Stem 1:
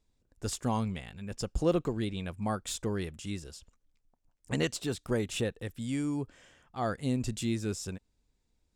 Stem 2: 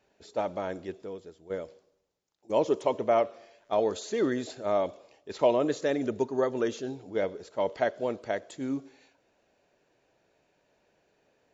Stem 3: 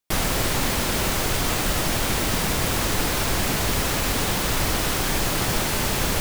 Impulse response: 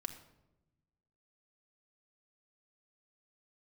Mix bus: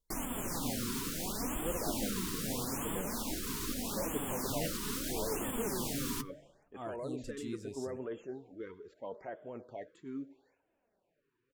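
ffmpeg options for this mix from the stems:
-filter_complex "[0:a]volume=-10dB,asplit=2[a][b];[b]volume=-9.5dB[c];[1:a]equalizer=f=6k:t=o:w=1.6:g=-14,alimiter=limit=-24dB:level=0:latency=1:release=27,adelay=1450,volume=-5dB[d];[2:a]equalizer=f=14k:t=o:w=2.5:g=8,alimiter=limit=-13dB:level=0:latency=1:release=346,equalizer=f=250:t=o:w=1:g=12,equalizer=f=1k:t=o:w=1:g=6,equalizer=f=2k:t=o:w=1:g=-4,volume=-13dB,asplit=2[e][f];[f]volume=-11.5dB[g];[3:a]atrim=start_sample=2205[h];[c][g]amix=inputs=2:normalize=0[i];[i][h]afir=irnorm=-1:irlink=0[j];[a][d][e][j]amix=inputs=4:normalize=0,flanger=delay=1.8:depth=6.5:regen=39:speed=0.57:shape=triangular,afftfilt=real='re*(1-between(b*sr/1024,630*pow(5100/630,0.5+0.5*sin(2*PI*0.77*pts/sr))/1.41,630*pow(5100/630,0.5+0.5*sin(2*PI*0.77*pts/sr))*1.41))':imag='im*(1-between(b*sr/1024,630*pow(5100/630,0.5+0.5*sin(2*PI*0.77*pts/sr))/1.41,630*pow(5100/630,0.5+0.5*sin(2*PI*0.77*pts/sr))*1.41))':win_size=1024:overlap=0.75"

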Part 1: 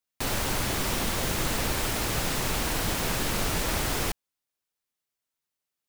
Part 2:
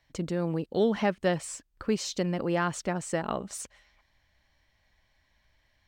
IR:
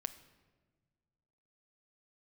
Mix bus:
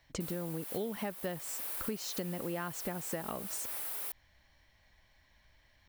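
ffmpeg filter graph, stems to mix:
-filter_complex "[0:a]highpass=520,aexciter=amount=5.9:drive=3.2:freq=9k,volume=-15dB[a];[1:a]volume=2.5dB[b];[a][b]amix=inputs=2:normalize=0,acompressor=threshold=-35dB:ratio=6"

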